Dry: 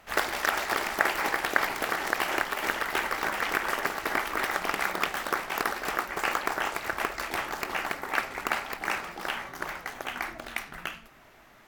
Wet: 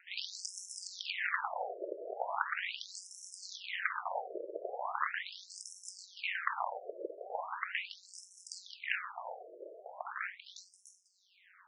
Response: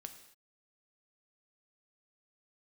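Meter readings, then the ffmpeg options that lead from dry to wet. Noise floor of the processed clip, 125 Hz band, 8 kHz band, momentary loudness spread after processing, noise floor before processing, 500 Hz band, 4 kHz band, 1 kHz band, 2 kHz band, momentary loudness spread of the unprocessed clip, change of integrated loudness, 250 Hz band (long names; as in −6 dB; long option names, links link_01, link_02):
−66 dBFS, below −40 dB, −8.0 dB, 13 LU, −55 dBFS, −9.0 dB, −8.5 dB, −10.0 dB, −11.0 dB, 9 LU, −10.0 dB, −18.0 dB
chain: -af "aeval=exprs='val(0)*sin(2*PI*93*n/s)':channel_layout=same,aeval=exprs='0.2*(abs(mod(val(0)/0.2+3,4)-2)-1)':channel_layout=same,afftfilt=real='re*between(b*sr/1024,450*pow(7600/450,0.5+0.5*sin(2*PI*0.39*pts/sr))/1.41,450*pow(7600/450,0.5+0.5*sin(2*PI*0.39*pts/sr))*1.41)':imag='im*between(b*sr/1024,450*pow(7600/450,0.5+0.5*sin(2*PI*0.39*pts/sr))/1.41,450*pow(7600/450,0.5+0.5*sin(2*PI*0.39*pts/sr))*1.41)':win_size=1024:overlap=0.75,volume=1dB"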